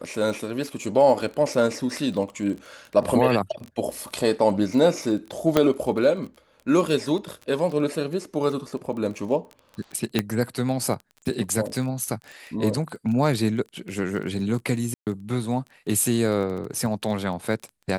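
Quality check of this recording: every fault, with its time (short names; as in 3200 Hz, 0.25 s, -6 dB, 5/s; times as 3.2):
crackle 18/s -31 dBFS
5.57 pop -5 dBFS
10.19 pop -7 dBFS
14.94–15.07 gap 0.128 s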